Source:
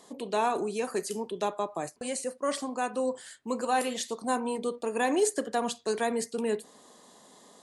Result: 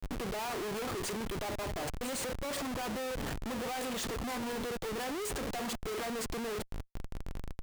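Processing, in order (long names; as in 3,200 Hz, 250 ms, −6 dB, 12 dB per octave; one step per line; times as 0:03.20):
surface crackle 190 per second −44 dBFS
comparator with hysteresis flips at −41.5 dBFS
level −5 dB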